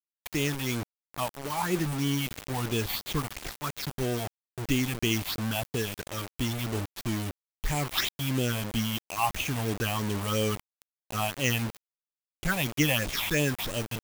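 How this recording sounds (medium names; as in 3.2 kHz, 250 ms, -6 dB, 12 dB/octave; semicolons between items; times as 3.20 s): aliases and images of a low sample rate 8.9 kHz, jitter 0%; phasing stages 6, 3 Hz, lowest notch 370–1500 Hz; a quantiser's noise floor 6-bit, dither none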